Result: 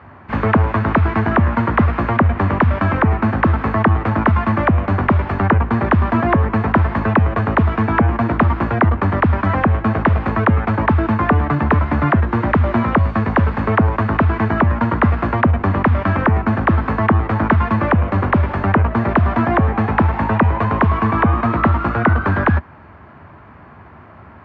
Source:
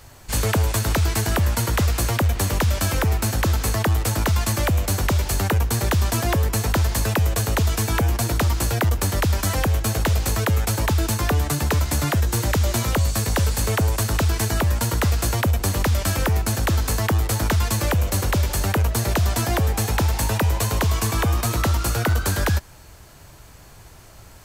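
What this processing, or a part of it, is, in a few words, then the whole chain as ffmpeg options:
bass cabinet: -af "highpass=frequency=80:width=0.5412,highpass=frequency=80:width=1.3066,equalizer=frequency=120:width_type=q:width=4:gain=-7,equalizer=frequency=230:width_type=q:width=4:gain=6,equalizer=frequency=490:width_type=q:width=4:gain=-5,equalizer=frequency=1100:width_type=q:width=4:gain=5,lowpass=frequency=2000:width=0.5412,lowpass=frequency=2000:width=1.3066,volume=8dB"

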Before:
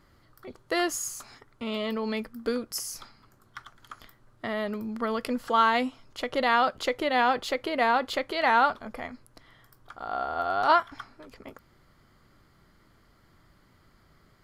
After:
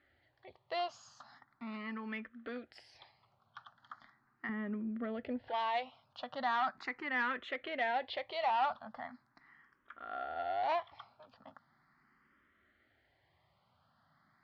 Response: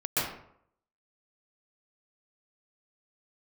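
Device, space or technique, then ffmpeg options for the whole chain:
barber-pole phaser into a guitar amplifier: -filter_complex "[0:a]asplit=2[link_01][link_02];[link_02]afreqshift=0.39[link_03];[link_01][link_03]amix=inputs=2:normalize=1,asoftclip=type=tanh:threshold=-23dB,highpass=110,equalizer=frequency=120:width_type=q:width=4:gain=-5,equalizer=frequency=180:width_type=q:width=4:gain=-6,equalizer=frequency=320:width_type=q:width=4:gain=-6,equalizer=frequency=450:width_type=q:width=4:gain=-9,equalizer=frequency=770:width_type=q:width=4:gain=5,equalizer=frequency=1800:width_type=q:width=4:gain=6,lowpass=frequency=4100:width=0.5412,lowpass=frequency=4100:width=1.3066,asettb=1/sr,asplit=3[link_04][link_05][link_06];[link_04]atrim=end=4.494[link_07];[link_05]atrim=start=4.49:end=5.49,asetpts=PTS-STARTPTS,afade=type=in:duration=0.004:curve=qsin,afade=type=out:start_time=0.996:duration=0.004:curve=qsin,tiltshelf=frequency=760:gain=9.5[link_08];[link_06]atrim=start=5.486[link_09];[link_07][link_08]acrossfade=duration=0.004:curve1=hsin:curve2=qsin[link_10];[link_10][link_09]acrossfade=duration=0.004:curve1=qsin:curve2=hsin,volume=-6dB"

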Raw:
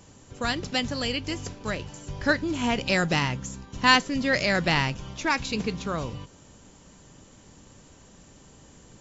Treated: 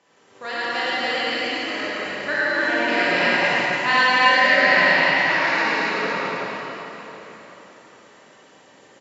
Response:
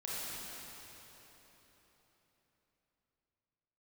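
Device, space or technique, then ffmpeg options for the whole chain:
station announcement: -filter_complex "[0:a]highpass=430,lowpass=4000,equalizer=frequency=1900:width_type=o:width=0.33:gain=6,aecho=1:1:107.9|282.8:0.891|1[link_01];[1:a]atrim=start_sample=2205[link_02];[link_01][link_02]afir=irnorm=-1:irlink=0"

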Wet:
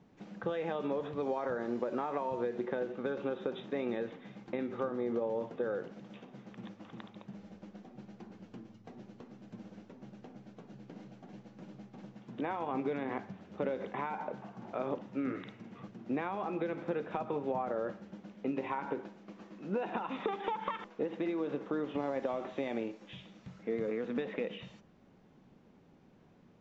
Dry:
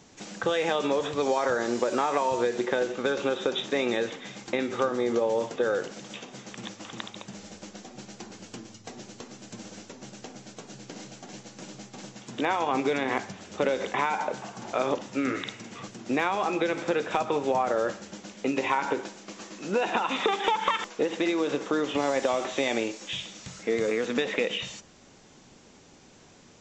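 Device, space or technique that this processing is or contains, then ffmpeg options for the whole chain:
phone in a pocket: -af "lowpass=3700,equalizer=frequency=180:width_type=o:width=0.95:gain=6,highshelf=frequency=2000:gain=-11.5,volume=-8.5dB"

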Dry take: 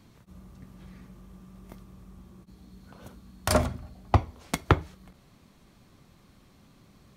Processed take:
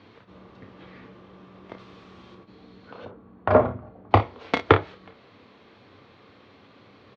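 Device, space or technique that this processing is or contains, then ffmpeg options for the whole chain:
overdrive pedal into a guitar cabinet: -filter_complex "[0:a]asettb=1/sr,asplit=3[link_01][link_02][link_03];[link_01]atrim=end=1.794[link_04];[link_02]atrim=start=1.79:end=2.35,asetpts=PTS-STARTPTS,afade=type=in:duration=0.004:curve=qsin,afade=type=out:start_time=0.556:duration=0.004:curve=qsin,highshelf=frequency=2300:gain=11.5[link_05];[link_03]atrim=start=2.346[link_06];[link_04][link_05]acrossfade=duration=0.004:curve1=hsin:curve2=qsin[link_07];[link_07][link_06]acrossfade=duration=0.004:curve1=qsin:curve2=hsin,asettb=1/sr,asplit=3[link_08][link_09][link_10];[link_08]atrim=end=3.054[link_11];[link_09]atrim=start=3.05:end=4.11,asetpts=PTS-STARTPTS,afade=type=in:duration=0.004:curve=qsin,afade=type=out:start_time=1.056:duration=0.004:curve=qsin,lowpass=1100[link_12];[link_10]atrim=start=4.106[link_13];[link_11][link_12]acrossfade=duration=0.004:curve1=hsin:curve2=qsin[link_14];[link_14][link_13]acrossfade=duration=0.004:curve1=qsin:curve2=hsin,aecho=1:1:31|56:0.355|0.168,asplit=2[link_15][link_16];[link_16]highpass=frequency=720:poles=1,volume=12dB,asoftclip=type=tanh:threshold=-3.5dB[link_17];[link_15][link_17]amix=inputs=2:normalize=0,lowpass=frequency=5000:poles=1,volume=-6dB,highpass=100,equalizer=frequency=100:width_type=q:width=4:gain=9,equalizer=frequency=160:width_type=q:width=4:gain=-6,equalizer=frequency=290:width_type=q:width=4:gain=4,equalizer=frequency=460:width_type=q:width=4:gain=9,lowpass=frequency=4000:width=0.5412,lowpass=frequency=4000:width=1.3066,volume=2.5dB"

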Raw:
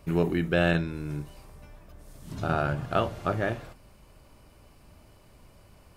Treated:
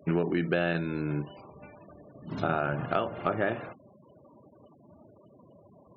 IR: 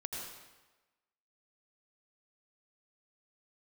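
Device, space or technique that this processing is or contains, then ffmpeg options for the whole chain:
AM radio: -af "highpass=180,lowpass=4200,acompressor=threshold=-29dB:ratio=8,asoftclip=type=tanh:threshold=-18.5dB,afftfilt=real='re*gte(hypot(re,im),0.00282)':imag='im*gte(hypot(re,im),0.00282)':win_size=1024:overlap=0.75,volume=6.5dB"

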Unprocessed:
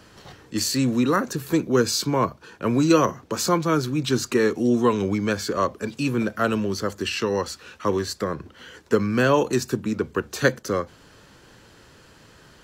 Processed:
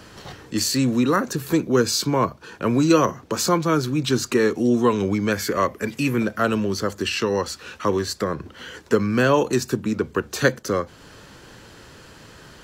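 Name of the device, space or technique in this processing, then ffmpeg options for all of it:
parallel compression: -filter_complex "[0:a]asplit=2[link_01][link_02];[link_02]acompressor=threshold=-34dB:ratio=6,volume=-0.5dB[link_03];[link_01][link_03]amix=inputs=2:normalize=0,asettb=1/sr,asplit=3[link_04][link_05][link_06];[link_04]atrim=end=5.324[link_07];[link_05]atrim=start=5.32:end=6.2,asetpts=PTS-STARTPTS,afade=type=in:duration=0.004:curve=qsin,afade=type=out:start_time=0.876:duration=0.004:curve=qsin,equalizer=frequency=2000:width_type=o:width=0.33:gain=11,equalizer=frequency=4000:width_type=o:width=0.33:gain=-4,equalizer=frequency=12500:width_type=o:width=0.33:gain=11[link_08];[link_06]atrim=start=6.196[link_09];[link_07][link_08]acrossfade=duration=0.004:curve1=hsin:curve2=qsin[link_10];[link_10][link_09]acrossfade=duration=0.004:curve1=qsin:curve2=hsin"

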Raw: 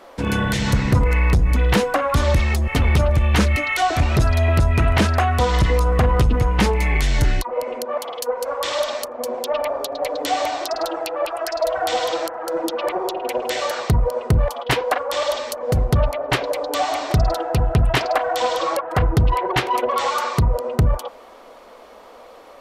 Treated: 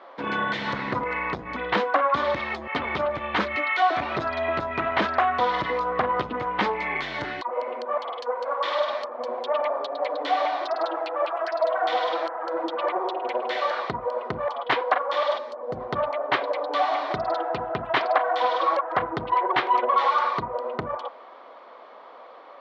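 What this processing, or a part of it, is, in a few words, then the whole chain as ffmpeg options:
phone earpiece: -filter_complex "[0:a]highpass=370,equalizer=frequency=460:width_type=q:width=4:gain=-4,equalizer=frequency=1100:width_type=q:width=4:gain=4,equalizer=frequency=2700:width_type=q:width=4:gain=-6,lowpass=frequency=3600:width=0.5412,lowpass=frequency=3600:width=1.3066,asplit=3[link_01][link_02][link_03];[link_01]afade=type=out:start_time=15.37:duration=0.02[link_04];[link_02]equalizer=frequency=2600:width_type=o:width=2.8:gain=-11.5,afade=type=in:start_time=15.37:duration=0.02,afade=type=out:start_time=15.79:duration=0.02[link_05];[link_03]afade=type=in:start_time=15.79:duration=0.02[link_06];[link_04][link_05][link_06]amix=inputs=3:normalize=0,volume=-1.5dB"

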